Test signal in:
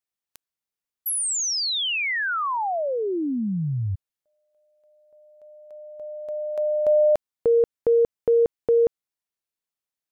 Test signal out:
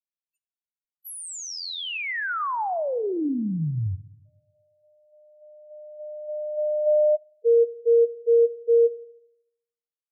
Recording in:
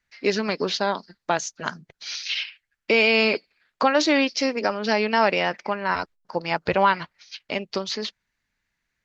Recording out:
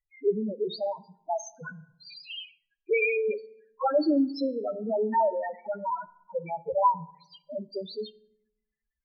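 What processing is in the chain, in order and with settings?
loudest bins only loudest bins 2; FDN reverb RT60 0.8 s, low-frequency decay 1.35×, high-frequency decay 0.65×, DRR 16 dB

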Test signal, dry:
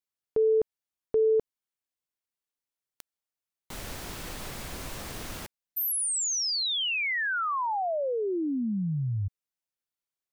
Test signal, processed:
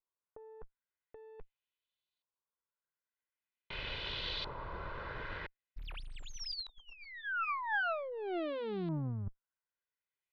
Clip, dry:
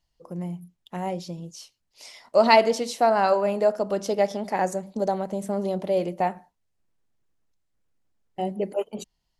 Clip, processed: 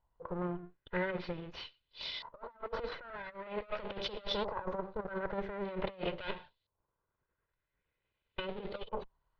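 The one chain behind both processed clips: minimum comb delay 2 ms; resonant high shelf 5800 Hz -13.5 dB, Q 3; negative-ratio compressor -32 dBFS, ratio -0.5; LFO low-pass saw up 0.45 Hz 980–4000 Hz; gain -7 dB

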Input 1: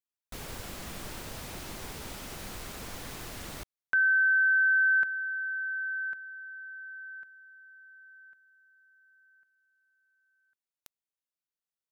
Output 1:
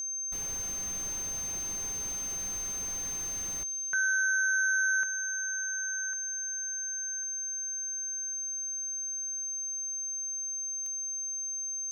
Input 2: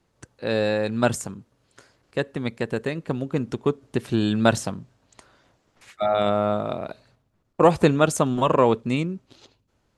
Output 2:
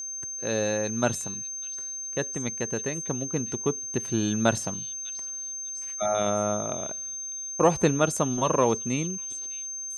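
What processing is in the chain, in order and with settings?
delay with a stepping band-pass 0.599 s, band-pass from 3900 Hz, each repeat 0.7 oct, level -11 dB; whine 6300 Hz -28 dBFS; gain -4.5 dB

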